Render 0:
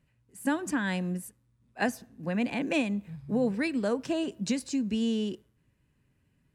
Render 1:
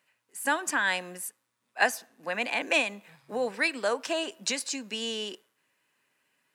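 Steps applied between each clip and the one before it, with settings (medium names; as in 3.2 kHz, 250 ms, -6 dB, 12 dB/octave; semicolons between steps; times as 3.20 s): high-pass 750 Hz 12 dB/octave; trim +8 dB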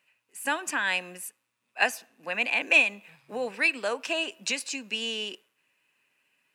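peaking EQ 2.6 kHz +10.5 dB 0.33 oct; trim -2 dB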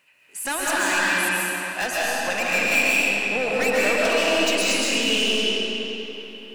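in parallel at +1.5 dB: compression, threshold -33 dBFS, peak gain reduction 16.5 dB; on the sum: hard clipper -25 dBFS, distortion -6 dB; reverberation RT60 3.7 s, pre-delay 95 ms, DRR -7 dB; trim +1.5 dB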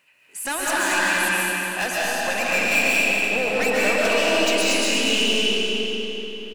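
feedback delay 237 ms, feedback 46%, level -7.5 dB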